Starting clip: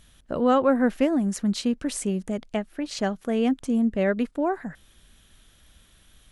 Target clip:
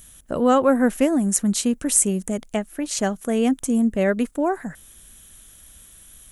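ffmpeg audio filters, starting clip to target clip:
ffmpeg -i in.wav -af "aexciter=amount=6.1:drive=2.4:freq=6400,volume=3dB" out.wav

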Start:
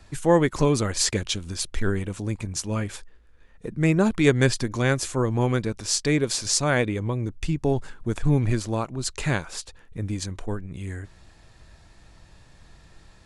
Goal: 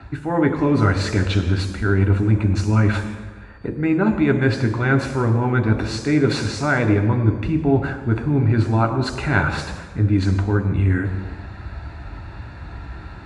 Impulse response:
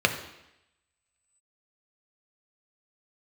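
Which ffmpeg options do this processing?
-filter_complex "[0:a]lowpass=frequency=3000:poles=1,areverse,acompressor=threshold=-33dB:ratio=6,areverse[link_01];[1:a]atrim=start_sample=2205,asetrate=25137,aresample=44100[link_02];[link_01][link_02]afir=irnorm=-1:irlink=0,volume=-1dB"

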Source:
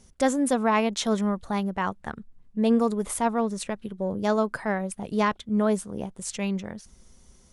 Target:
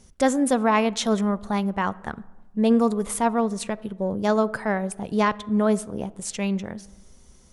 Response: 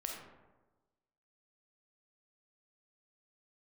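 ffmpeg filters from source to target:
-filter_complex "[0:a]asplit=2[link_01][link_02];[1:a]atrim=start_sample=2205,highshelf=frequency=5200:gain=-12[link_03];[link_02][link_03]afir=irnorm=-1:irlink=0,volume=-15dB[link_04];[link_01][link_04]amix=inputs=2:normalize=0,volume=1.5dB"

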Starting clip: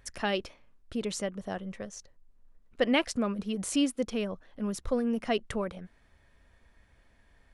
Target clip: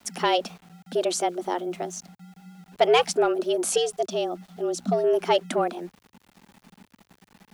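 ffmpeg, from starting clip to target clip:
ffmpeg -i in.wav -filter_complex "[0:a]equalizer=frequency=1800:width_type=o:width=0.5:gain=-6.5,afreqshift=290,asoftclip=type=tanh:threshold=-17dB,asettb=1/sr,asplit=3[link_01][link_02][link_03];[link_01]atrim=end=3.774[link_04];[link_02]atrim=start=3.77:end=5.04,asetpts=PTS-STARTPTS,afade=type=in:duration=0.004:curve=qsin,afade=type=out:start_time=1.266:duration=0.004:curve=qsin,highpass=180,equalizer=frequency=210:width_type=q:width=4:gain=7,equalizer=frequency=580:width_type=q:width=4:gain=-7,equalizer=frequency=1100:width_type=q:width=4:gain=-9,equalizer=frequency=1700:width_type=q:width=4:gain=-9,equalizer=frequency=2400:width_type=q:width=4:gain=-9,lowpass=frequency=8500:width=0.5412,lowpass=frequency=8500:width=1.3066[link_05];[link_03]atrim=start=5.036[link_06];[link_04][link_05]acrossfade=duration=0.004:curve1=hsin:curve2=qsin[link_07];[link_07][link_06]acrossfade=duration=0.004:curve1=qsin:curve2=hsin,aeval=exprs='val(0)*gte(abs(val(0)),0.00141)':channel_layout=same,afreqshift=-120,volume=8.5dB" out.wav

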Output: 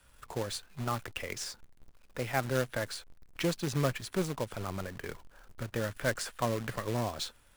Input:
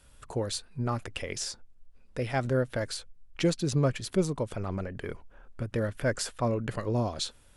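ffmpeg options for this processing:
ffmpeg -i in.wav -filter_complex "[0:a]acrossover=split=160|820|2500[link_01][link_02][link_03][link_04];[link_03]acontrast=75[link_05];[link_01][link_02][link_05][link_04]amix=inputs=4:normalize=0,acrusher=bits=2:mode=log:mix=0:aa=0.000001,volume=-5.5dB" out.wav

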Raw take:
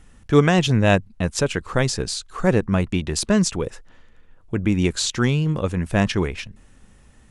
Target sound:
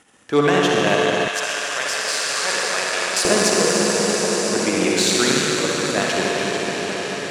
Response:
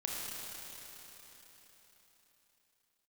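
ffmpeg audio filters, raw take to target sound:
-filter_complex "[0:a]aeval=exprs='if(lt(val(0),0),0.447*val(0),val(0))':channel_layout=same[link_01];[1:a]atrim=start_sample=2205,asetrate=23814,aresample=44100[link_02];[link_01][link_02]afir=irnorm=-1:irlink=0,acontrast=38,asetnsamples=nb_out_samples=441:pad=0,asendcmd='1.28 highpass f 1000;3.25 highpass f 370',highpass=330,dynaudnorm=framelen=370:gausssize=7:maxgain=11.5dB,volume=-1dB"

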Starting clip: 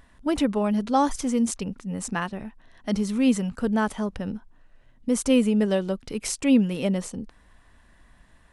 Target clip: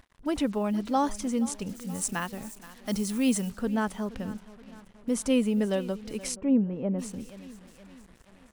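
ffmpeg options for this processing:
ffmpeg -i in.wav -filter_complex "[0:a]aecho=1:1:475|950|1425|1900:0.126|0.0629|0.0315|0.0157,acrusher=bits=7:mix=0:aa=0.5,asettb=1/sr,asplit=3[link_01][link_02][link_03];[link_01]atrim=end=1.694[link_04];[link_02]atrim=start=1.69:end=3.52,asetpts=PTS-STARTPTS,afade=type=in:duration=0.004:curve=qsin,afade=type=out:start_time=1.826:duration=0.004:curve=qsin,aemphasis=mode=production:type=50kf[link_05];[link_03]atrim=start=3.516[link_06];[link_04][link_05]acrossfade=duration=0.004:curve1=hsin:curve2=qsin[link_07];[link_07][link_06]acrossfade=duration=0.004:curve1=qsin:curve2=hsin,asplit=3[link_08][link_09][link_10];[link_08]afade=type=out:start_time=6.34:duration=0.02[link_11];[link_09]lowpass=1000,afade=type=in:start_time=6.34:duration=0.02,afade=type=out:start_time=6.98:duration=0.02[link_12];[link_10]afade=type=in:start_time=6.98:duration=0.02[link_13];[link_11][link_12][link_13]amix=inputs=3:normalize=0,volume=-4.5dB" out.wav

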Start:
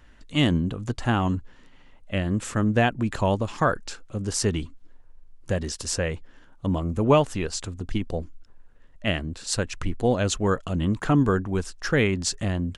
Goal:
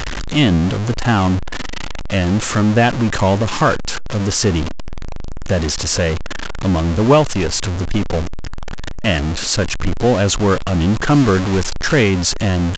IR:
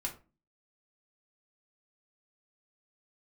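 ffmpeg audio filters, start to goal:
-filter_complex "[0:a]aeval=exprs='val(0)+0.5*0.075*sgn(val(0))':channel_layout=same,asettb=1/sr,asplit=3[link_01][link_02][link_03];[link_01]atrim=end=11.104[link_04];[link_02]atrim=start=11.1:end=12.03,asetpts=PTS-STARTPTS,afade=type=in:duration=0.004:curve=qsin,afade=type=out:start_time=0.926:duration=0.004:curve=qsin,acrusher=bits=6:dc=4:mix=0:aa=0.000001[link_05];[link_03]atrim=start=12.026[link_06];[link_04][link_05]acrossfade=duration=0.004:curve1=hsin:curve2=qsin[link_07];[link_07][link_06]acrossfade=duration=0.004:curve1=qsin:curve2=hsin,aresample=16000,aresample=44100,volume=5.5dB"

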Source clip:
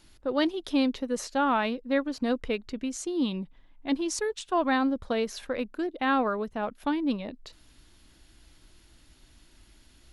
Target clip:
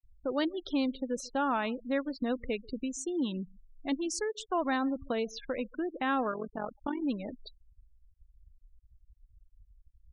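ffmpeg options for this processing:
ffmpeg -i in.wav -filter_complex "[0:a]asplit=3[link_01][link_02][link_03];[link_01]afade=type=out:start_time=6.31:duration=0.02[link_04];[link_02]tremolo=f=45:d=0.824,afade=type=in:start_time=6.31:duration=0.02,afade=type=out:start_time=7.01:duration=0.02[link_05];[link_03]afade=type=in:start_time=7.01:duration=0.02[link_06];[link_04][link_05][link_06]amix=inputs=3:normalize=0,asplit=2[link_07][link_08];[link_08]acompressor=threshold=-34dB:ratio=8,volume=3dB[link_09];[link_07][link_09]amix=inputs=2:normalize=0,aecho=1:1:139:0.0708,afftfilt=real='re*gte(hypot(re,im),0.0282)':imag='im*gte(hypot(re,im),0.0282)':win_size=1024:overlap=0.75,volume=-7.5dB" out.wav

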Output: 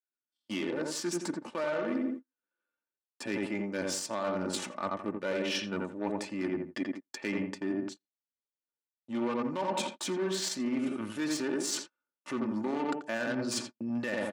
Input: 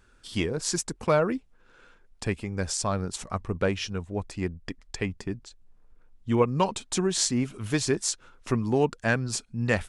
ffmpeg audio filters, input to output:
ffmpeg -i in.wav -filter_complex "[0:a]atempo=0.69,bass=frequency=250:gain=-4,treble=frequency=4000:gain=-7,asplit=2[link_01][link_02];[link_02]adelay=85,lowpass=frequency=1500:poles=1,volume=-4.5dB,asplit=2[link_03][link_04];[link_04]adelay=85,lowpass=frequency=1500:poles=1,volume=0.34,asplit=2[link_05][link_06];[link_06]adelay=85,lowpass=frequency=1500:poles=1,volume=0.34,asplit=2[link_07][link_08];[link_08]adelay=85,lowpass=frequency=1500:poles=1,volume=0.34[link_09];[link_03][link_05][link_07][link_09]amix=inputs=4:normalize=0[link_10];[link_01][link_10]amix=inputs=2:normalize=0,alimiter=limit=-19.5dB:level=0:latency=1:release=32,aeval=exprs='0.106*(cos(1*acos(clip(val(0)/0.106,-1,1)))-cos(1*PI/2))+0.0299*(cos(2*acos(clip(val(0)/0.106,-1,1)))-cos(2*PI/2))+0.0133*(cos(4*acos(clip(val(0)/0.106,-1,1)))-cos(4*PI/2))+0.00299*(cos(8*acos(clip(val(0)/0.106,-1,1)))-cos(8*PI/2))':channel_layout=same,dynaudnorm=framelen=310:gausssize=7:maxgain=7dB,agate=range=-42dB:threshold=-37dB:ratio=16:detection=peak,highpass=frequency=160:width=0.5412,highpass=frequency=160:width=1.3066,aecho=1:1:3.4:0.55,areverse,acompressor=threshold=-30dB:ratio=6,areverse,adynamicequalizer=threshold=0.00316:dfrequency=6500:dqfactor=0.7:tfrequency=6500:tqfactor=0.7:attack=5:release=100:ratio=0.375:range=2:mode=cutabove:tftype=highshelf" out.wav

